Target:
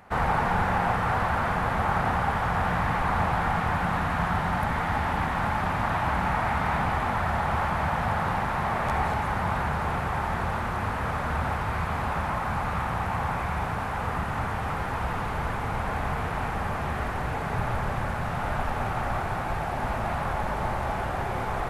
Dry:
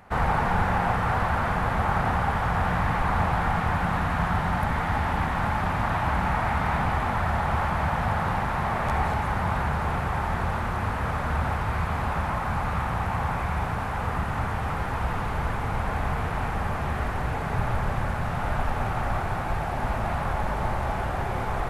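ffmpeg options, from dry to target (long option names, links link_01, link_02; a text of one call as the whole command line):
ffmpeg -i in.wav -af "lowshelf=frequency=110:gain=-5" out.wav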